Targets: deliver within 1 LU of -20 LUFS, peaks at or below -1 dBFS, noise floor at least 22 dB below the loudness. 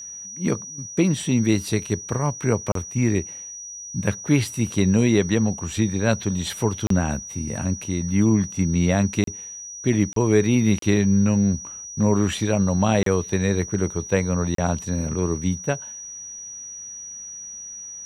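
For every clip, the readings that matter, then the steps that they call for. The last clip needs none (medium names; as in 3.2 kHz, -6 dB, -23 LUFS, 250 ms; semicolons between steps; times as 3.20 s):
dropouts 7; longest dropout 33 ms; steady tone 5.8 kHz; tone level -34 dBFS; loudness -22.5 LUFS; peak level -4.5 dBFS; loudness target -20.0 LUFS
-> interpolate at 2.72/6.87/9.24/10.13/10.79/13.03/14.55 s, 33 ms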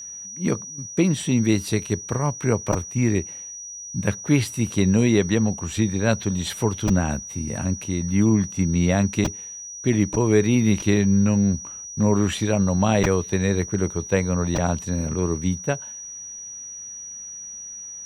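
dropouts 0; steady tone 5.8 kHz; tone level -34 dBFS
-> band-stop 5.8 kHz, Q 30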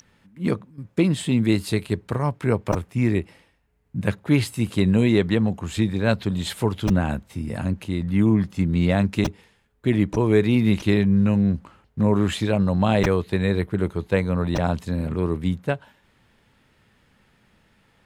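steady tone not found; loudness -22.5 LUFS; peak level -5.0 dBFS; loudness target -20.0 LUFS
-> trim +2.5 dB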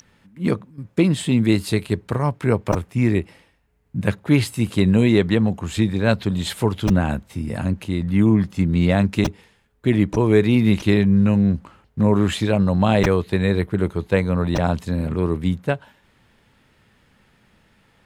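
loudness -20.0 LUFS; peak level -2.5 dBFS; noise floor -60 dBFS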